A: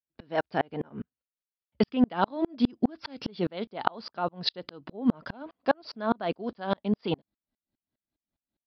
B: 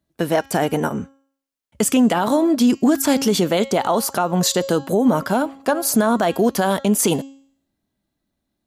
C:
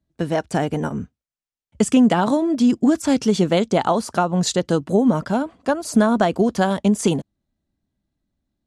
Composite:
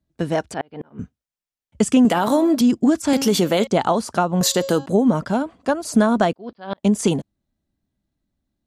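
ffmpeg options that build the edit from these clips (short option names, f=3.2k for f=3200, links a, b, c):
-filter_complex "[0:a]asplit=2[a][b];[1:a]asplit=3[c][d][e];[2:a]asplit=6[f][g][h][i][j][k];[f]atrim=end=0.542[l];[a]atrim=start=0.538:end=0.992[m];[g]atrim=start=0.988:end=2.052[n];[c]atrim=start=2.048:end=2.612[o];[h]atrim=start=2.608:end=3.132[p];[d]atrim=start=3.128:end=3.672[q];[i]atrim=start=3.668:end=4.412[r];[e]atrim=start=4.408:end=4.862[s];[j]atrim=start=4.858:end=6.332[t];[b]atrim=start=6.328:end=6.832[u];[k]atrim=start=6.828[v];[l][m]acrossfade=d=0.004:c1=hsin:c2=hsin[w];[w][n]acrossfade=d=0.004:c1=hsin:c2=hsin[x];[x][o]acrossfade=d=0.004:c1=hsin:c2=hsin[y];[y][p]acrossfade=d=0.004:c1=hsin:c2=hsin[z];[z][q]acrossfade=d=0.004:c1=hsin:c2=hsin[aa];[aa][r]acrossfade=d=0.004:c1=hsin:c2=hsin[ab];[ab][s]acrossfade=d=0.004:c1=hsin:c2=hsin[ac];[ac][t]acrossfade=d=0.004:c1=hsin:c2=hsin[ad];[ad][u]acrossfade=d=0.004:c1=hsin:c2=hsin[ae];[ae][v]acrossfade=d=0.004:c1=hsin:c2=hsin"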